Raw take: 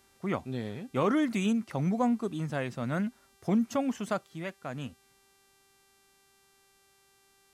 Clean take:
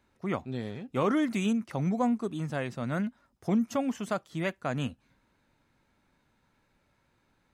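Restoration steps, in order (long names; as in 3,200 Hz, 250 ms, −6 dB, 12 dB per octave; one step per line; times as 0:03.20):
hum removal 392.5 Hz, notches 33
level 0 dB, from 0:04.26 +6.5 dB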